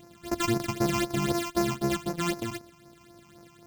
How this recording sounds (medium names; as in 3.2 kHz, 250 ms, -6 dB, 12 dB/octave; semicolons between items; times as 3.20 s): a buzz of ramps at a fixed pitch in blocks of 128 samples; phasing stages 8, 3.9 Hz, lowest notch 490–3300 Hz